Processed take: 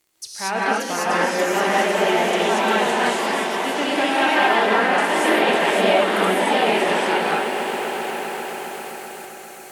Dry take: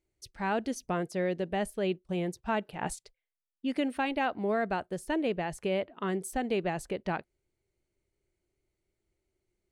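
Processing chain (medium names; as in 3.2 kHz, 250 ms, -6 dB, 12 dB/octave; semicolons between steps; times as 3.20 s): partial rectifier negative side -3 dB; high-pass 100 Hz 6 dB/octave; RIAA curve recording; low-pass that closes with the level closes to 2.3 kHz, closed at -29 dBFS; reverse; upward compressor, threshold -42 dBFS; reverse; crackle 44 per s -54 dBFS; on a send: echo with a slow build-up 132 ms, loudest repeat 5, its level -13 dB; on the sum: gated-style reverb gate 260 ms rising, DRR -7 dB; ever faster or slower copies 605 ms, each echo +2 st, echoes 2; trim +6.5 dB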